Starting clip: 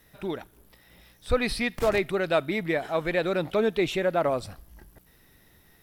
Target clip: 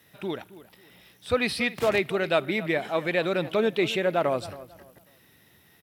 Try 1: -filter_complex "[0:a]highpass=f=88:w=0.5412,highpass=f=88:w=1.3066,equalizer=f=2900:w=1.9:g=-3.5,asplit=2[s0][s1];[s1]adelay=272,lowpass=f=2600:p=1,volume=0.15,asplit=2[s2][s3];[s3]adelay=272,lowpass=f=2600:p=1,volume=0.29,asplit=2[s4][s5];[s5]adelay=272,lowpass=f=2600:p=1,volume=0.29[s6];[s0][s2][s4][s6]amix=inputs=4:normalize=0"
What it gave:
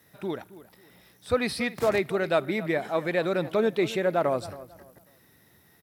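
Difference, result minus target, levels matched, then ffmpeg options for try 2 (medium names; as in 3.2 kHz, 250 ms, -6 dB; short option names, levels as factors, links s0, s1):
4 kHz band -4.0 dB
-filter_complex "[0:a]highpass=f=88:w=0.5412,highpass=f=88:w=1.3066,equalizer=f=2900:w=1.9:g=5,asplit=2[s0][s1];[s1]adelay=272,lowpass=f=2600:p=1,volume=0.15,asplit=2[s2][s3];[s3]adelay=272,lowpass=f=2600:p=1,volume=0.29,asplit=2[s4][s5];[s5]adelay=272,lowpass=f=2600:p=1,volume=0.29[s6];[s0][s2][s4][s6]amix=inputs=4:normalize=0"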